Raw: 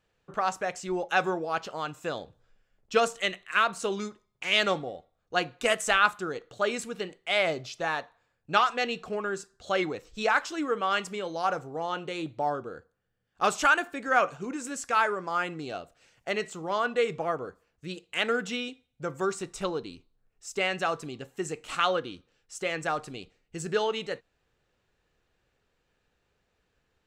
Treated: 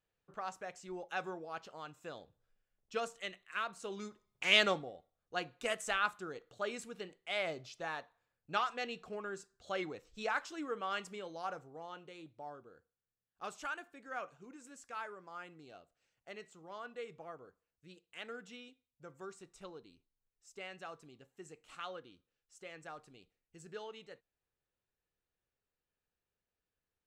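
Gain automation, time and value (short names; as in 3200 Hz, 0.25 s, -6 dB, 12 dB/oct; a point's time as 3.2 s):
3.84 s -14 dB
4.5 s -1 dB
4.92 s -11 dB
11.17 s -11 dB
12.31 s -19 dB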